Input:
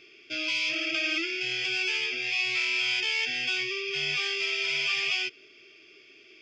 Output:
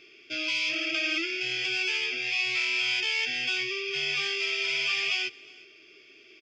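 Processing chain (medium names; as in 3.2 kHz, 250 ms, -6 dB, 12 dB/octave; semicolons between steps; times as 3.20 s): hum notches 50/100/150 Hz; delay 363 ms -23 dB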